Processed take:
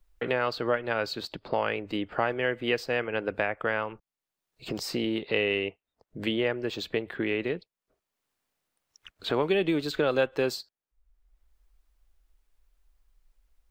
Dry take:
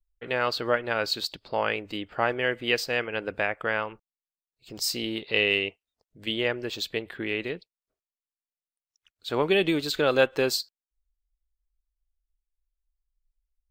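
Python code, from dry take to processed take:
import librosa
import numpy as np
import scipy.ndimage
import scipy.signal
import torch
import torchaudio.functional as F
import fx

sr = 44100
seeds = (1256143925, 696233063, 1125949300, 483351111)

y = fx.high_shelf(x, sr, hz=2700.0, db=-9.5)
y = fx.band_squash(y, sr, depth_pct=70)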